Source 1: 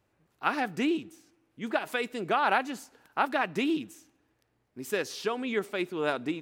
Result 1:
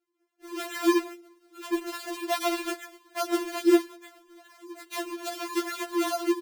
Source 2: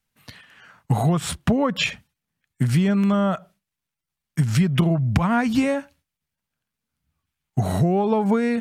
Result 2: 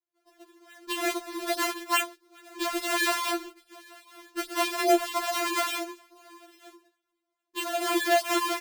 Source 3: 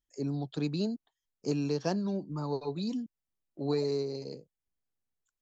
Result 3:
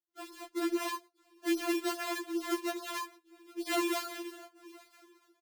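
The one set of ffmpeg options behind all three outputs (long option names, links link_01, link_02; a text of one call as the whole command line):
ffmpeg -i in.wav -filter_complex "[0:a]acrossover=split=1100[link_01][link_02];[link_02]adelay=130[link_03];[link_01][link_03]amix=inputs=2:normalize=0,afreqshift=29,dynaudnorm=framelen=250:gausssize=5:maxgain=9dB,asplit=2[link_04][link_05];[link_05]aecho=0:1:965:0.0668[link_06];[link_04][link_06]amix=inputs=2:normalize=0,acrusher=samples=38:mix=1:aa=0.000001:lfo=1:lforange=60.8:lforate=2.4,asplit=2[link_07][link_08];[link_08]aeval=exprs='(mod(1.78*val(0)+1,2)-1)/1.78':channel_layout=same,volume=-12dB[link_09];[link_07][link_09]amix=inputs=2:normalize=0,highpass=100,afftfilt=real='re*4*eq(mod(b,16),0)':imag='im*4*eq(mod(b,16),0)':win_size=2048:overlap=0.75,volume=-6.5dB" out.wav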